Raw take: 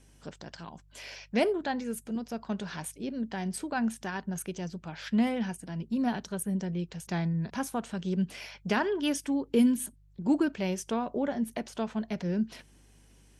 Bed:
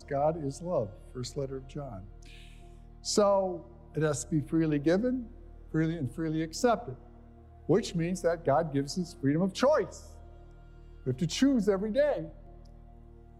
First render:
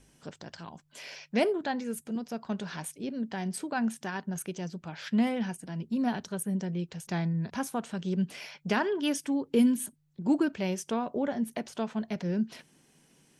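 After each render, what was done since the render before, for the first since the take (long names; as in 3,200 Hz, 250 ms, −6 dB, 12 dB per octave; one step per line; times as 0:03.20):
hum removal 50 Hz, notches 2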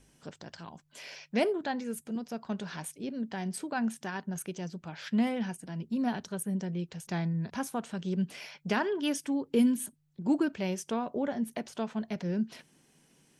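level −1.5 dB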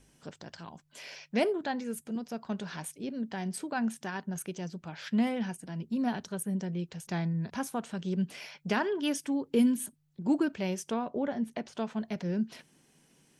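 0:10.94–0:11.77: high-frequency loss of the air 62 metres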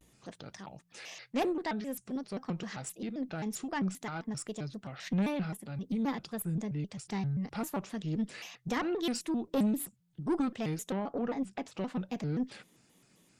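tube saturation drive 24 dB, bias 0.3
pitch modulation by a square or saw wave square 3.8 Hz, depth 250 cents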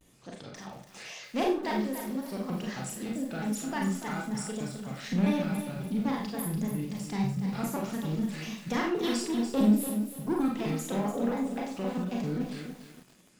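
four-comb reverb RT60 0.39 s, combs from 30 ms, DRR −0.5 dB
feedback echo at a low word length 290 ms, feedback 35%, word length 8 bits, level −8.5 dB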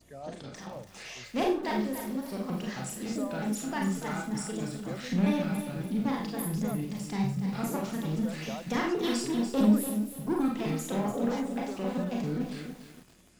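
mix in bed −15 dB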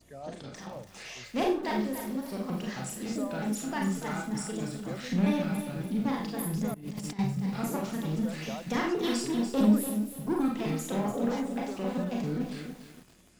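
0:06.74–0:07.19: compressor whose output falls as the input rises −38 dBFS, ratio −0.5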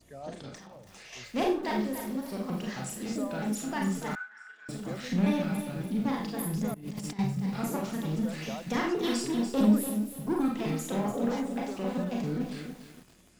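0:00.57–0:01.13: downward compressor 5 to 1, threshold −46 dBFS
0:04.15–0:04.69: four-pole ladder band-pass 1,600 Hz, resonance 85%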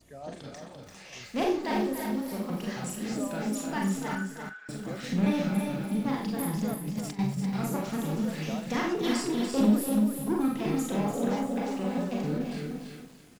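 double-tracking delay 41 ms −13.5 dB
on a send: single-tap delay 342 ms −6 dB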